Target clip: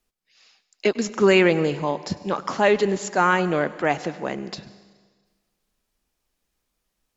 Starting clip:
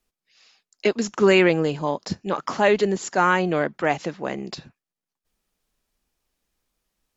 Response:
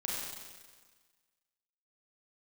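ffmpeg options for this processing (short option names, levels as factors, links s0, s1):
-filter_complex "[0:a]asplit=2[s0][s1];[1:a]atrim=start_sample=2205,adelay=100[s2];[s1][s2]afir=irnorm=-1:irlink=0,volume=0.106[s3];[s0][s3]amix=inputs=2:normalize=0"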